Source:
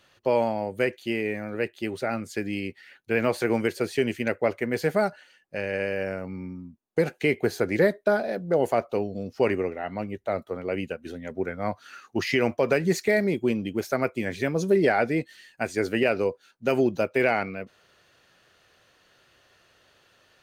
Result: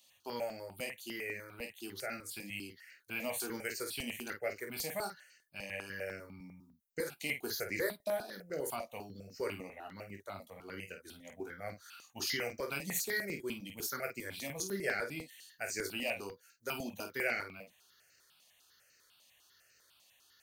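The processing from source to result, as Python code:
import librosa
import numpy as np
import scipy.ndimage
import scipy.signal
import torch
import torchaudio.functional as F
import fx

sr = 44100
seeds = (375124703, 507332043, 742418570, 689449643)

y = scipy.signal.lfilter([1.0, -0.9], [1.0], x)
y = fx.room_early_taps(y, sr, ms=(21, 50), db=(-7.5, -7.5))
y = fx.phaser_held(y, sr, hz=10.0, low_hz=400.0, high_hz=3400.0)
y = F.gain(torch.from_numpy(y), 4.0).numpy()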